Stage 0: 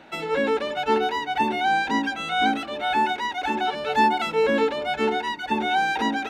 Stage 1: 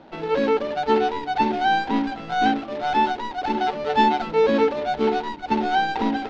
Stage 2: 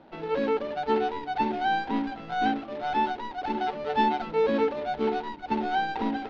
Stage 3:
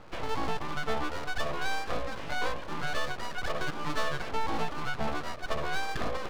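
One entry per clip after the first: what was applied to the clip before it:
median filter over 25 samples; low-pass 4.9 kHz 24 dB/octave; trim +3.5 dB
distance through air 88 m; trim -5.5 dB
compression 2.5:1, threshold -33 dBFS, peak gain reduction 9.5 dB; full-wave rectifier; trim +5 dB

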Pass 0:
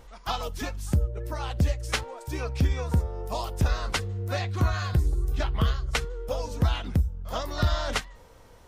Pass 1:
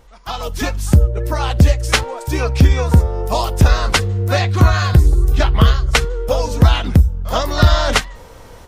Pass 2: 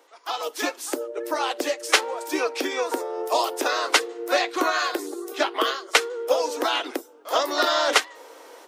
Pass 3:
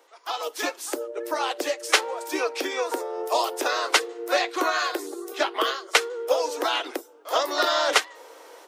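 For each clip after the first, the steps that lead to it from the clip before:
level rider gain up to 13.5 dB; trim +1.5 dB
steep high-pass 290 Hz 72 dB/octave; trim -3 dB
high-pass 300 Hz 24 dB/octave; trim -1 dB

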